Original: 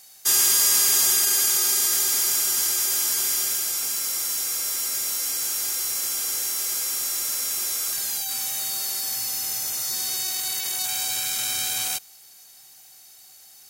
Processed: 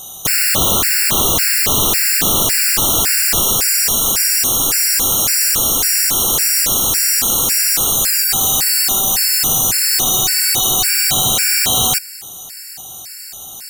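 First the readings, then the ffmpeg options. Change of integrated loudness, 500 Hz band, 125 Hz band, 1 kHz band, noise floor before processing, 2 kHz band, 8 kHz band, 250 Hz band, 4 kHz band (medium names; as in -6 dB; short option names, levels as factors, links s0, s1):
+9.5 dB, +17.0 dB, no reading, +14.5 dB, -49 dBFS, +13.0 dB, +8.0 dB, +21.0 dB, +10.0 dB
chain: -af "aeval=exprs='0.376*sin(PI/2*6.31*val(0)/0.376)':c=same,lowshelf=f=350:g=9,afftfilt=real='re*gt(sin(2*PI*1.8*pts/sr)*(1-2*mod(floor(b*sr/1024/1400),2)),0)':imag='im*gt(sin(2*PI*1.8*pts/sr)*(1-2*mod(floor(b*sr/1024/1400),2)),0)':win_size=1024:overlap=0.75"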